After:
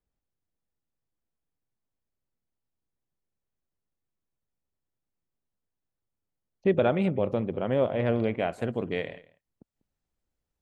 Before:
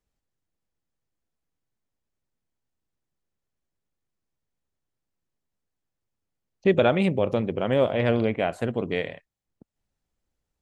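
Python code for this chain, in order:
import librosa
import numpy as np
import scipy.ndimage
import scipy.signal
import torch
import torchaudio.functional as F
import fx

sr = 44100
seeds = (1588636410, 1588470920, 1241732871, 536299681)

y = fx.high_shelf(x, sr, hz=2500.0, db=fx.steps((0.0, -10.0), (8.22, -2.5)))
y = y + 10.0 ** (-21.5 / 20.0) * np.pad(y, (int(195 * sr / 1000.0), 0))[:len(y)]
y = y * librosa.db_to_amplitude(-3.0)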